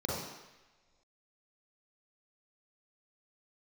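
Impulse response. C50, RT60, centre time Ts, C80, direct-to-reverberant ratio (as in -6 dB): -1.5 dB, not exponential, 78 ms, 2.5 dB, -5.5 dB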